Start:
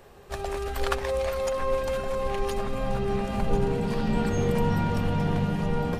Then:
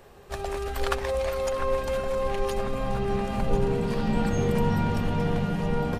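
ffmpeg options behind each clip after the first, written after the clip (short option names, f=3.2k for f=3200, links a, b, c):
-filter_complex "[0:a]asplit=2[a][b];[b]adelay=699.7,volume=-11dB,highshelf=f=4k:g=-15.7[c];[a][c]amix=inputs=2:normalize=0"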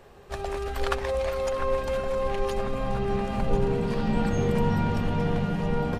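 -af "highshelf=f=8.4k:g=-7.5"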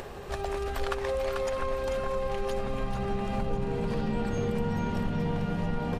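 -af "acompressor=mode=upward:threshold=-31dB:ratio=2.5,aecho=1:1:440:0.447,acompressor=threshold=-27dB:ratio=3"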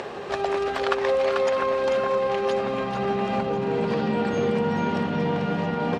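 -af "highpass=210,lowpass=5k,volume=8.5dB"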